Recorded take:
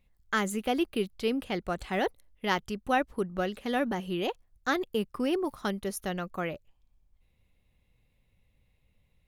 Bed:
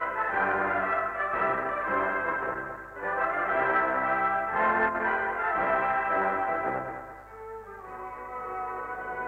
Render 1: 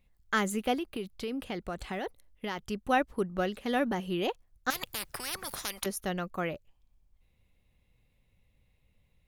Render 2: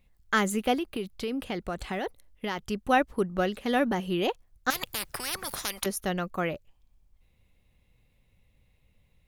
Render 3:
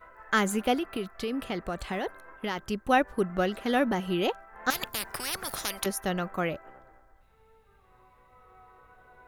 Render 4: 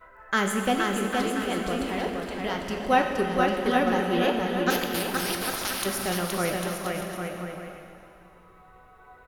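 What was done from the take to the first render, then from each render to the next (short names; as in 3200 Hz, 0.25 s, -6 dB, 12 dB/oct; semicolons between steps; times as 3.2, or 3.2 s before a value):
0.74–2.61 compressor, threshold -31 dBFS; 4.7–5.86 spectral compressor 10:1
gain +3.5 dB
add bed -21.5 dB
bouncing-ball echo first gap 0.47 s, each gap 0.7×, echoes 5; plate-style reverb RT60 2.7 s, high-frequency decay 0.9×, DRR 3 dB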